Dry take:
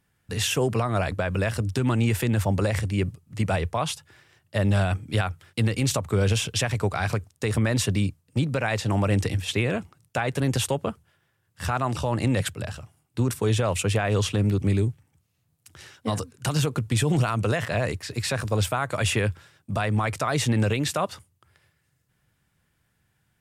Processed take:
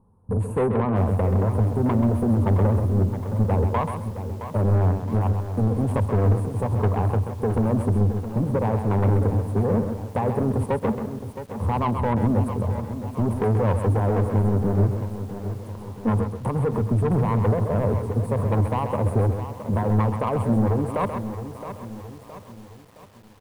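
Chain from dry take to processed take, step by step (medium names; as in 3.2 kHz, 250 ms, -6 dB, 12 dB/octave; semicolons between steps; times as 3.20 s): rippled EQ curve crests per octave 0.89, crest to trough 9 dB; in parallel at +2 dB: compression 12:1, threshold -33 dBFS, peak gain reduction 19 dB; on the sum: elliptic band-stop 1–9.5 kHz, stop band 40 dB; saturation -21.5 dBFS, distortion -9 dB; distance through air 140 m; feedback delay 132 ms, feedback 20%, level -8 dB; on a send at -23 dB: reverberation RT60 0.40 s, pre-delay 3 ms; on the sum: bit-crushed delay 667 ms, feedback 55%, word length 8-bit, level -10.5 dB; trim +4.5 dB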